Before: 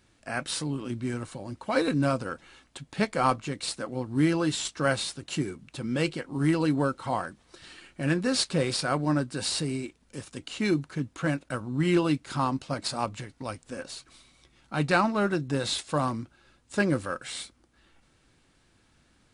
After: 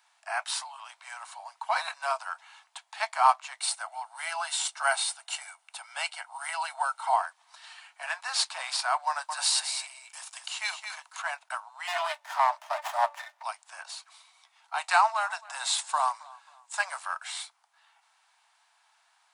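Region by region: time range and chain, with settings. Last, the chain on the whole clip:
0:03.60–0:07.16: parametric band 8,900 Hz +10 dB 0.21 octaves + comb filter 1.4 ms, depth 33%
0:09.07–0:11.22: high-shelf EQ 4,000 Hz +7 dB + single-tap delay 216 ms −7.5 dB
0:11.87–0:13.43: hum removal 192.7 Hz, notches 3 + hollow resonant body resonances 320/600/1,800/3,200 Hz, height 18 dB, ringing for 85 ms + windowed peak hold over 9 samples
0:14.78–0:17.00: parametric band 7,900 Hz +7.5 dB 0.61 octaves + feedback echo with a low-pass in the loop 268 ms, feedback 37%, low-pass 5,000 Hz, level −22 dB
whole clip: Butterworth high-pass 660 Hz 96 dB per octave; parametric band 930 Hz +8.5 dB 0.46 octaves

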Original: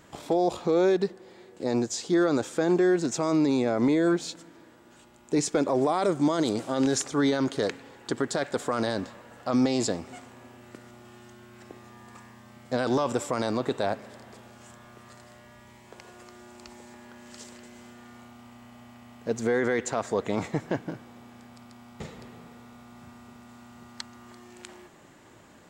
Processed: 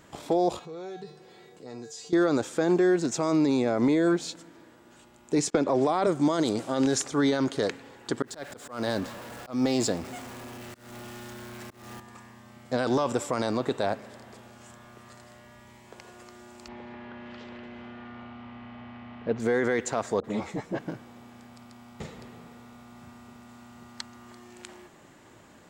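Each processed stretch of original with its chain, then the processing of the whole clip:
0:00.59–0:02.13: transient designer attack −5 dB, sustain −1 dB + tuned comb filter 150 Hz, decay 0.38 s, harmonics odd, mix 90% + envelope flattener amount 50%
0:05.50–0:06.07: downward expander −40 dBFS + high-frequency loss of the air 75 metres + multiband upward and downward compressor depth 100%
0:08.22–0:12.00: converter with a step at zero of −40 dBFS + volume swells 219 ms
0:16.68–0:19.40: mu-law and A-law mismatch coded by mu + low-pass filter 3,300 Hz 24 dB per octave
0:20.20–0:20.79: all-pass dispersion highs, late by 42 ms, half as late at 790 Hz + string-ensemble chorus
whole clip: no processing

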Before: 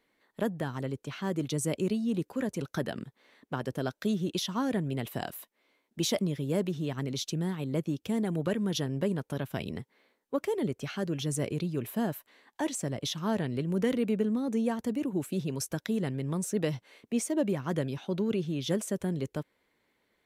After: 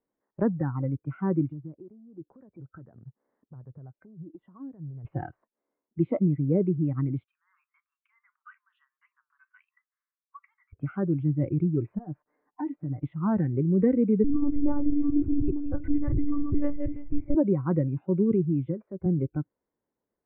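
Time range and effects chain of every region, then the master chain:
0:01.47–0:05.05: high-frequency loss of the air 420 metres + downward compressor 4 to 1, threshold −42 dBFS
0:07.24–0:10.73: Butterworth high-pass 1,100 Hz 72 dB per octave + flanger 1.6 Hz, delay 5.5 ms, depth 2.4 ms, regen +82%
0:11.98–0:13.04: downward compressor 5 to 1, threshold −35 dBFS + comb filter 6.7 ms, depth 56%
0:14.24–0:17.35: feedback delay that plays each chunk backwards 167 ms, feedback 43%, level −3.5 dB + one-pitch LPC vocoder at 8 kHz 290 Hz
0:18.66–0:19.06: downward compressor 5 to 1, threshold −29 dBFS + multiband upward and downward expander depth 40%
whole clip: Bessel low-pass filter 920 Hz, order 8; noise reduction from a noise print of the clip's start 17 dB; dynamic equaliser 680 Hz, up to −6 dB, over −48 dBFS, Q 1.6; level +8 dB

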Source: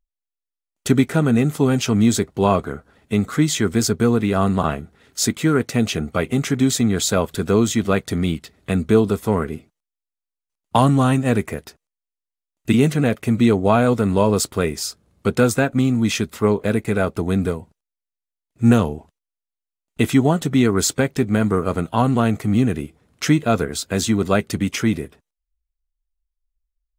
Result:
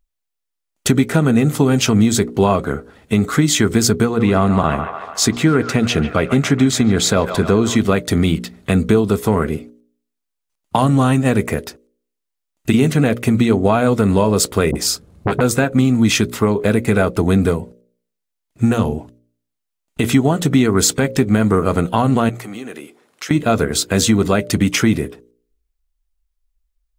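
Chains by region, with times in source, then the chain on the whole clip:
0:04.05–0:07.76: high-shelf EQ 7,600 Hz −10 dB + delay with a band-pass on its return 145 ms, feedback 63%, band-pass 1,300 Hz, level −10 dB
0:14.71–0:15.41: low-shelf EQ 470 Hz +7.5 dB + all-pass dispersion highs, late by 42 ms, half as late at 420 Hz + saturating transformer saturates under 1,100 Hz
0:22.29–0:23.31: high-pass filter 440 Hz + notch filter 670 Hz, Q 18 + downward compressor 3 to 1, threshold −38 dBFS
whole clip: downward compressor, threshold −17 dBFS; hum removal 59.47 Hz, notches 10; boost into a limiter +9 dB; level −1 dB

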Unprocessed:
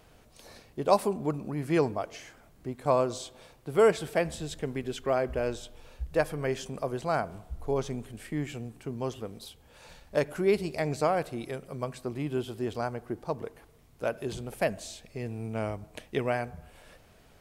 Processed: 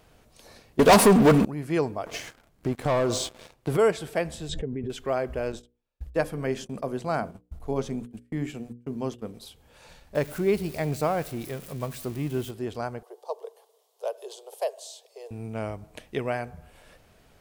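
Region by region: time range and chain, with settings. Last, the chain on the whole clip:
0:00.79–0:01.45: comb filter 4.3 ms, depth 61% + leveller curve on the samples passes 5
0:02.06–0:03.77: leveller curve on the samples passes 3 + high-shelf EQ 9,100 Hz −3.5 dB + downward compressor 5 to 1, threshold −21 dBFS
0:04.49–0:04.90: expanding power law on the bin magnitudes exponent 1.6 + low-pass filter 7,500 Hz + background raised ahead of every attack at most 27 dB per second
0:05.52–0:09.34: dynamic equaliser 230 Hz, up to +7 dB, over −47 dBFS, Q 1.6 + noise gate −41 dBFS, range −35 dB + mains-hum notches 60/120/180/240/300/360/420/480/540 Hz
0:10.15–0:12.51: spike at every zero crossing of −29.5 dBFS + bass and treble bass +5 dB, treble −6 dB
0:13.03–0:15.31: Butterworth high-pass 410 Hz 72 dB per octave + flat-topped bell 1,800 Hz −13.5 dB 1.2 octaves
whole clip: no processing

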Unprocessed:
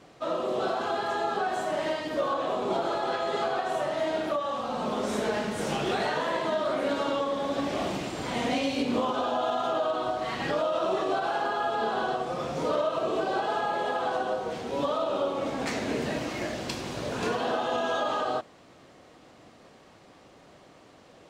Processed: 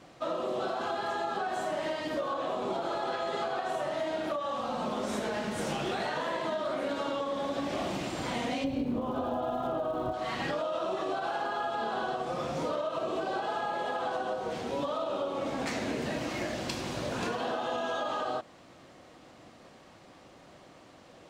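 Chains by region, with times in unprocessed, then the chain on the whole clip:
0:08.63–0:10.12: spectral tilt −4 dB per octave + surface crackle 480 per second −44 dBFS
whole clip: notch filter 430 Hz, Q 12; downward compressor, threshold −29 dBFS

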